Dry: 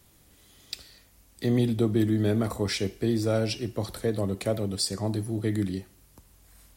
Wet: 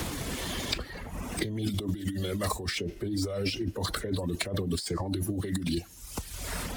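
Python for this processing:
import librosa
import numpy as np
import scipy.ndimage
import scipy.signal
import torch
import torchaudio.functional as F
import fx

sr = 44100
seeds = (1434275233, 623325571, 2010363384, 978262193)

y = scipy.ndimage.median_filter(x, 3, mode='constant')
y = fx.dereverb_blind(y, sr, rt60_s=0.85)
y = fx.over_compress(y, sr, threshold_db=-36.0, ratio=-1.0)
y = fx.pitch_keep_formants(y, sr, semitones=-2.0)
y = fx.band_squash(y, sr, depth_pct=100)
y = y * 10.0 ** (4.0 / 20.0)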